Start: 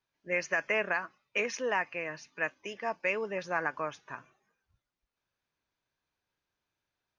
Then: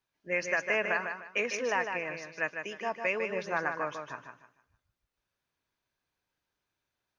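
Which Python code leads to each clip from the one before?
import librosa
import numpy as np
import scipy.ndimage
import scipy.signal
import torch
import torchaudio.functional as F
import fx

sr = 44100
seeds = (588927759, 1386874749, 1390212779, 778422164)

y = fx.echo_feedback(x, sr, ms=152, feedback_pct=28, wet_db=-6.5)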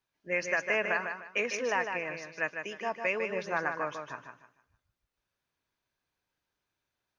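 y = x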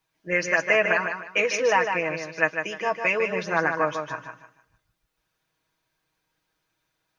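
y = x + 0.65 * np.pad(x, (int(6.3 * sr / 1000.0), 0))[:len(x)]
y = F.gain(torch.from_numpy(y), 7.0).numpy()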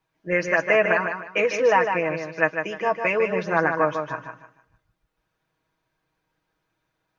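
y = fx.high_shelf(x, sr, hz=2600.0, db=-12.0)
y = F.gain(torch.from_numpy(y), 4.0).numpy()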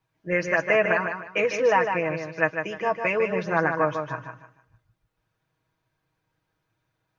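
y = fx.peak_eq(x, sr, hz=110.0, db=10.5, octaves=0.66)
y = F.gain(torch.from_numpy(y), -2.0).numpy()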